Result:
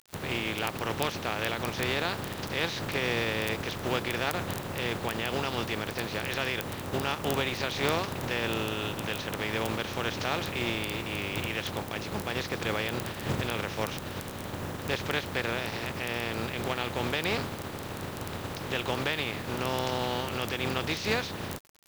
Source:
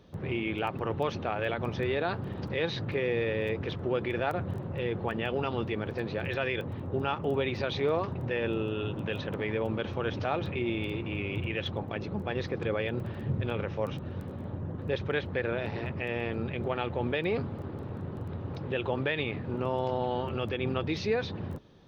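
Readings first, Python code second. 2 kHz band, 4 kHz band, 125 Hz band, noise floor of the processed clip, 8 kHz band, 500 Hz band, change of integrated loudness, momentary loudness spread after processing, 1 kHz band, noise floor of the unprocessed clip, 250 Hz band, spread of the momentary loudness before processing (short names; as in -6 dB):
+4.0 dB, +8.0 dB, -2.5 dB, -39 dBFS, n/a, -2.5 dB, +1.0 dB, 6 LU, +2.5 dB, -40 dBFS, -1.0 dB, 6 LU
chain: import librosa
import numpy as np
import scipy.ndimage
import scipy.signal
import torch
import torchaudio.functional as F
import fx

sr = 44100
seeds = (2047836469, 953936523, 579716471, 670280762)

y = fx.spec_flatten(x, sr, power=0.47)
y = fx.quant_dither(y, sr, seeds[0], bits=8, dither='none')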